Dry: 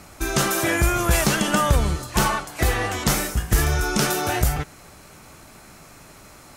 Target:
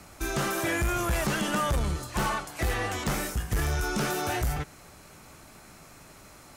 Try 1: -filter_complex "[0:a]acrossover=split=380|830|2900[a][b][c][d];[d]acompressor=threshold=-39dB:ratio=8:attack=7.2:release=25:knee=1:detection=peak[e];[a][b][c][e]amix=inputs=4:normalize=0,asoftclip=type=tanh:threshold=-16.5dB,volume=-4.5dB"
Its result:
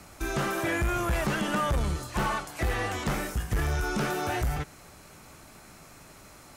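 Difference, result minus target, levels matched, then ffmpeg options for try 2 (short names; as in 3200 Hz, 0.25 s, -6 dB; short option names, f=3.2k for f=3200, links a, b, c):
compressor: peak gain reduction +6 dB
-filter_complex "[0:a]acrossover=split=380|830|2900[a][b][c][d];[d]acompressor=threshold=-32dB:ratio=8:attack=7.2:release=25:knee=1:detection=peak[e];[a][b][c][e]amix=inputs=4:normalize=0,asoftclip=type=tanh:threshold=-16.5dB,volume=-4.5dB"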